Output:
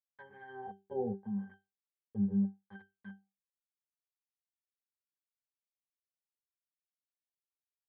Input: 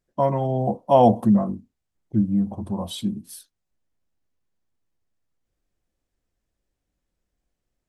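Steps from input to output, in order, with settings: local Wiener filter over 41 samples; on a send at -22 dB: reverberation RT60 2.9 s, pre-delay 42 ms; on the sum: harmonic-percussive split percussive -7 dB; small samples zeroed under -24.5 dBFS; low-pass that closes with the level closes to 870 Hz, closed at -17.5 dBFS; bass shelf 180 Hz +6 dB; pitch-class resonator G, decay 0.22 s; dynamic bell 670 Hz, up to -4 dB, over -44 dBFS, Q 0.72; wah-wah 0.77 Hz 420–1900 Hz, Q 2.7; trim +7 dB

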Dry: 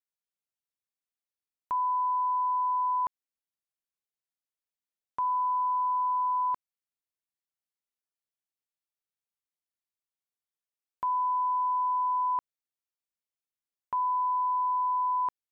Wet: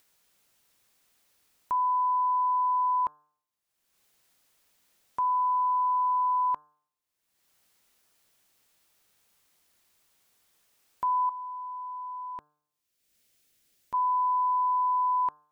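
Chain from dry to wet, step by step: de-hum 149.4 Hz, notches 11; 11.29–13.94 s: peaking EQ 1 kHz -12 dB 1.1 oct; upward compressor, threshold -52 dBFS; trim +2 dB

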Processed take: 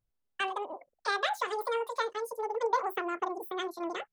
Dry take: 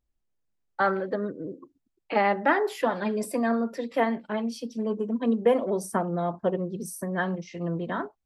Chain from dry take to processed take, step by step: speed mistake 7.5 ips tape played at 15 ips; dynamic bell 2.7 kHz, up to -5 dB, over -38 dBFS, Q 0.84; trim -5 dB

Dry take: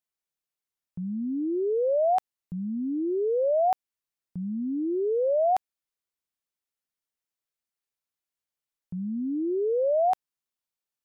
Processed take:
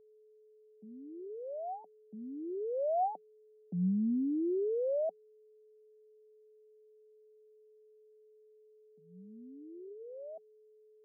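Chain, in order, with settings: Doppler pass-by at 3.67 s, 54 m/s, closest 15 m; Chebyshev band-pass 180–760 Hz, order 5; whistle 430 Hz -63 dBFS; trim +3.5 dB

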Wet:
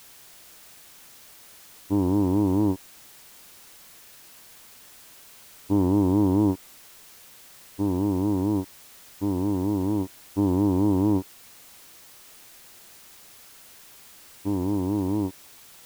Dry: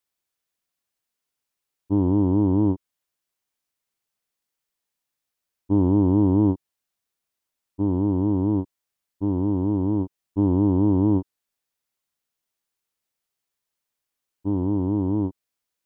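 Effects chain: bass shelf 400 Hz -7 dB; added noise white -52 dBFS; trim +2.5 dB

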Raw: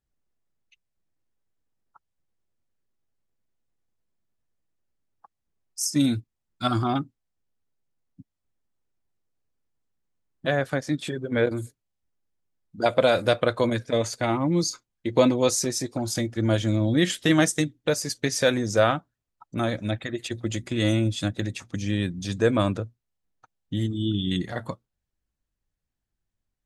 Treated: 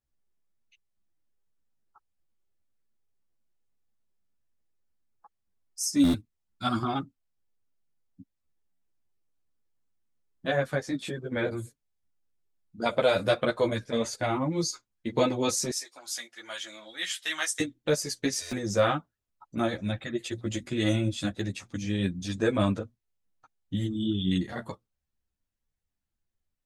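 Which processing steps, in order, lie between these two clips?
15.70–17.60 s: high-pass 1.3 kHz 12 dB/octave; buffer glitch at 6.03/8.71/18.41 s, samples 512, times 8; three-phase chorus

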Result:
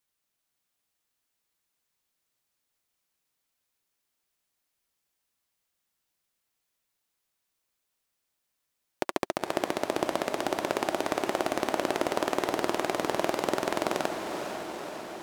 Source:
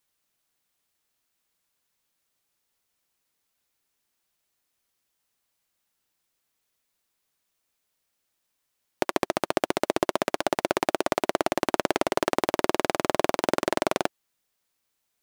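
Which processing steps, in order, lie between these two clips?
echo that smears into a reverb 479 ms, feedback 68%, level -6 dB; trim -4.5 dB

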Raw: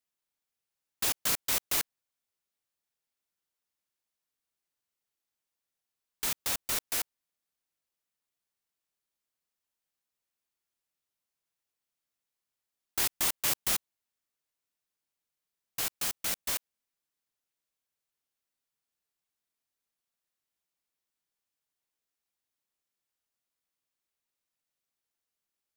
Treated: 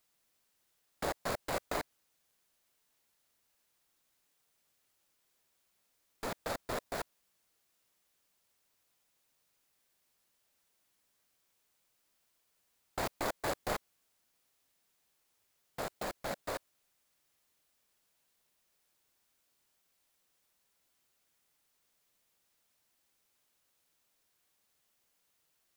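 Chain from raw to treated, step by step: median filter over 15 samples; peaking EQ 590 Hz +7.5 dB 0.82 oct; added noise white -78 dBFS; trim +1 dB

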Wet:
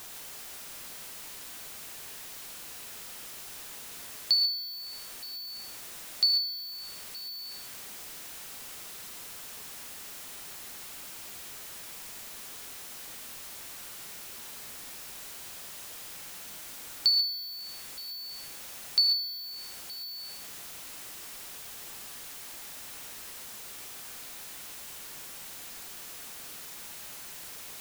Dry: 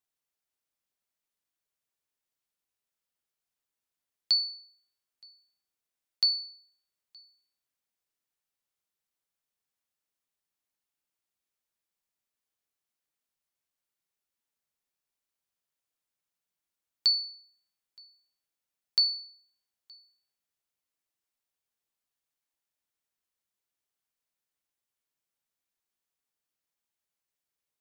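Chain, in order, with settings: jump at every zero crossing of -37 dBFS; gated-style reverb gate 160 ms rising, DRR 5.5 dB

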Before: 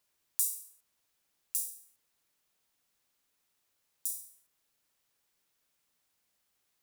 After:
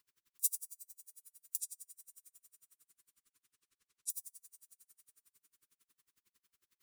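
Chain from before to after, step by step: Chebyshev band-stop 420–1100 Hz, order 2; peak limiter -16 dBFS, peak gain reduction 10 dB; 1.60–4.10 s: low-pass 9.9 kHz 24 dB/octave; Schroeder reverb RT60 3.9 s, combs from 28 ms, DRR 12 dB; logarithmic tremolo 11 Hz, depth 38 dB; trim +7 dB

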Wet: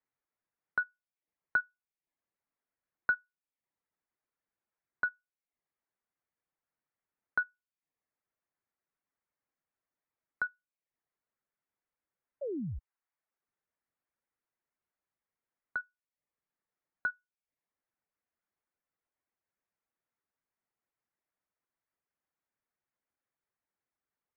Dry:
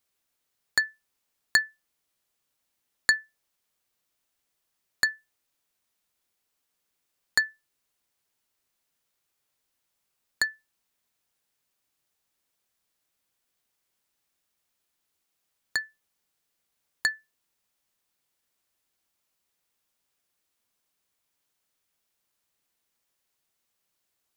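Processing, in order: painted sound fall, 12.41–12.79 s, 320–880 Hz -29 dBFS; mistuned SSB -280 Hz 330–2400 Hz; reverb removal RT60 0.54 s; trim -6.5 dB

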